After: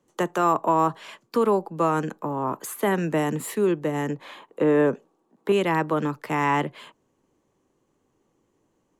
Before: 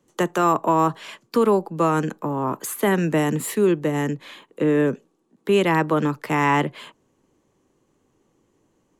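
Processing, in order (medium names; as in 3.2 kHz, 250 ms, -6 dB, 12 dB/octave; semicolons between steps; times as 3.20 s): peaking EQ 810 Hz +4 dB 1.8 oct, from 4.10 s +11 dB, from 5.52 s +2.5 dB; trim -5 dB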